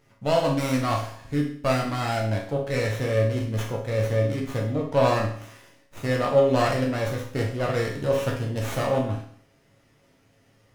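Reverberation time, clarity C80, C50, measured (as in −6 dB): 0.55 s, 9.5 dB, 5.0 dB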